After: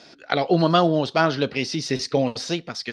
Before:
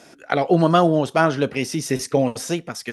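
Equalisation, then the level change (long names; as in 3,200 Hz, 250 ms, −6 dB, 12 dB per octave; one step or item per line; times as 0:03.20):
low-pass with resonance 4,400 Hz, resonance Q 3.9
−2.5 dB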